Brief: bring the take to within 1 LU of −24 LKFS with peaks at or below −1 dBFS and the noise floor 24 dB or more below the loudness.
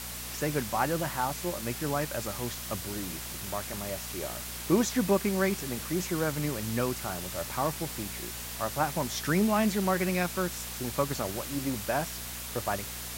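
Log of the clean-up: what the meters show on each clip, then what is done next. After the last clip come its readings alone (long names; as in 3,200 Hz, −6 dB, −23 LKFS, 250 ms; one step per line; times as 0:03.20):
mains hum 60 Hz; hum harmonics up to 240 Hz; level of the hum −44 dBFS; background noise floor −39 dBFS; target noise floor −55 dBFS; integrated loudness −31.0 LKFS; sample peak −12.5 dBFS; target loudness −24.0 LKFS
→ hum removal 60 Hz, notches 4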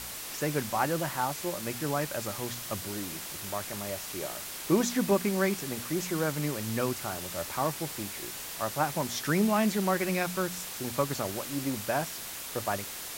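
mains hum none found; background noise floor −40 dBFS; target noise floor −55 dBFS
→ broadband denoise 15 dB, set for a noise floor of −40 dBFS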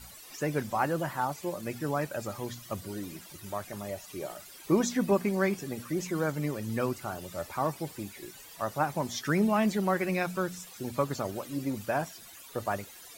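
background noise floor −50 dBFS; target noise floor −56 dBFS
→ broadband denoise 6 dB, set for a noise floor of −50 dBFS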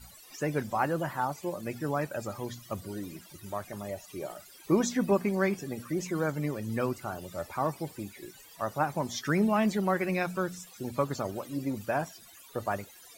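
background noise floor −53 dBFS; target noise floor −56 dBFS
→ broadband denoise 6 dB, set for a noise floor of −53 dBFS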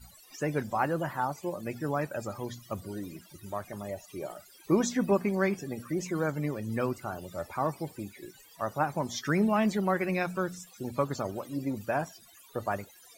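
background noise floor −56 dBFS; integrated loudness −32.0 LKFS; sample peak −13.0 dBFS; target loudness −24.0 LKFS
→ level +8 dB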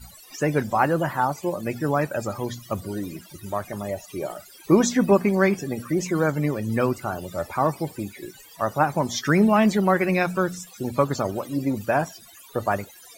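integrated loudness −24.0 LKFS; sample peak −5.0 dBFS; background noise floor −48 dBFS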